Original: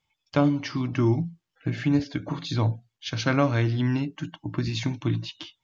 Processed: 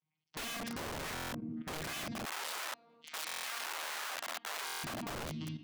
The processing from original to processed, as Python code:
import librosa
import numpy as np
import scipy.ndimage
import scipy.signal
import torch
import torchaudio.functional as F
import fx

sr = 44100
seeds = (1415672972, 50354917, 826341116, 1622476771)

y = fx.vocoder_arp(x, sr, chord='bare fifth', root=51, every_ms=364)
y = fx.recorder_agc(y, sr, target_db=-16.5, rise_db_per_s=14.0, max_gain_db=30)
y = fx.transient(y, sr, attack_db=2, sustain_db=6)
y = fx.room_shoebox(y, sr, seeds[0], volume_m3=730.0, walls='mixed', distance_m=0.97)
y = (np.mod(10.0 ** (23.0 / 20.0) * y + 1.0, 2.0) - 1.0) / 10.0 ** (23.0 / 20.0)
y = fx.highpass(y, sr, hz=980.0, slope=12, at=(2.25, 4.78))
y = fx.level_steps(y, sr, step_db=12)
y = fx.buffer_glitch(y, sr, at_s=(1.14, 3.26, 4.65), block=1024, repeats=7)
y = y * librosa.db_to_amplitude(-4.5)